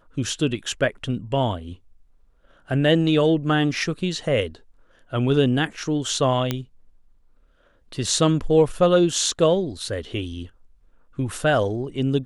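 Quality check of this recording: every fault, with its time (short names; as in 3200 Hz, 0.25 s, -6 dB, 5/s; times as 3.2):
6.51 pop -9 dBFS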